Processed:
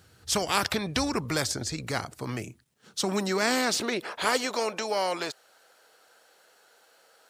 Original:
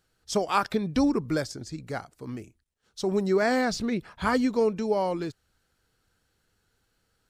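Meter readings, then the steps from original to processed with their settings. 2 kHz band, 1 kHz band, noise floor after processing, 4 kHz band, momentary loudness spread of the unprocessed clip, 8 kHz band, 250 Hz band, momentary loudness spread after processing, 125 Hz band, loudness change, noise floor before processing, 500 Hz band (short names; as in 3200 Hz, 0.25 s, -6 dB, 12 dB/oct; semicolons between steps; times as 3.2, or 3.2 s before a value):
+3.0 dB, -0.5 dB, -62 dBFS, +8.5 dB, 14 LU, +9.5 dB, -5.5 dB, 10 LU, -0.5 dB, -1.5 dB, -74 dBFS, -3.5 dB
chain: high-pass sweep 86 Hz -> 600 Hz, 1.95–4.59; spectral compressor 2:1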